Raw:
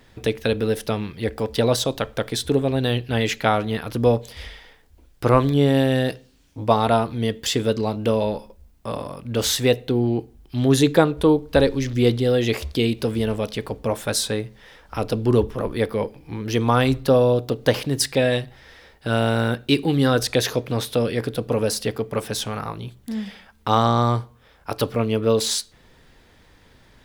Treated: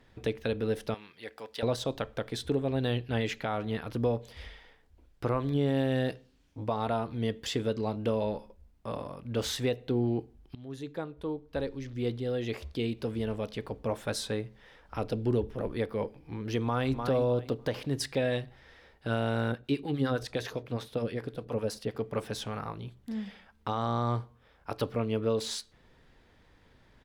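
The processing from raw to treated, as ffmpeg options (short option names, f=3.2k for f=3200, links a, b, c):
-filter_complex "[0:a]asettb=1/sr,asplit=3[a][b][c];[a]atrim=end=0.944[d];[b]atrim=start=0.94:end=1.63,asetpts=PTS-STARTPTS,afade=t=in:d=0.004:c=qsin,afade=t=out:st=0.686:d=0.004:c=qsin,highpass=f=1.5k:p=1[e];[c]atrim=start=1.626[f];[d][e]acrossfade=d=0.004:c1=hsin:c2=qsin[g];[g][f]acrossfade=d=0.004:c1=qsin:c2=hsin,asettb=1/sr,asplit=3[h][i][j];[h]atrim=end=15.094[k];[i]atrim=start=15.09:end=15.7,asetpts=PTS-STARTPTS,afade=t=in:d=0.004:c=qsin,afade=t=out:st=0.606:d=0.004:c=qsin,equalizer=f=1.1k:w=3.8:g=-8[l];[j]atrim=start=15.696[m];[k][l]acrossfade=d=0.004:c1=hsin:c2=qsin[n];[n][m]acrossfade=d=0.004:c1=qsin:c2=hsin,asplit=2[o][p];[p]afade=t=in:st=16.63:d=0.01,afade=t=out:st=17.03:d=0.01,aecho=0:1:300|600|900:0.334965|0.0669931|0.0133986[q];[o][q]amix=inputs=2:normalize=0,asettb=1/sr,asplit=3[r][s][t];[r]atrim=end=19.524[u];[s]atrim=start=19.52:end=21.95,asetpts=PTS-STARTPTS,afade=t=in:d=0.004:c=qsin,afade=t=out:st=2.426:d=0.004:c=qsin,acrossover=split=740[v][w];[v]aeval=exprs='val(0)*(1-0.7/2+0.7/2*cos(2*PI*9.8*n/s))':c=same[x];[w]aeval=exprs='val(0)*(1-0.7/2-0.7/2*cos(2*PI*9.8*n/s))':c=same[y];[x][y]amix=inputs=2:normalize=0[z];[t]atrim=start=21.946[aa];[u][z]acrossfade=d=0.004:c1=hsin:c2=qsin[ab];[ab][aa]acrossfade=d=0.004:c1=qsin:c2=hsin,asplit=2[ac][ad];[ac]atrim=end=10.55,asetpts=PTS-STARTPTS,afade=t=out:st=10.546:d=0.004:c=hsin:silence=0.1[ae];[ad]atrim=start=10.55,asetpts=PTS-STARTPTS,afade=t=in:d=3.51:silence=0.1[af];[ae][af]concat=n=2:v=0:a=1,aemphasis=mode=reproduction:type=cd,alimiter=limit=-10.5dB:level=0:latency=1:release=215,volume=-8dB"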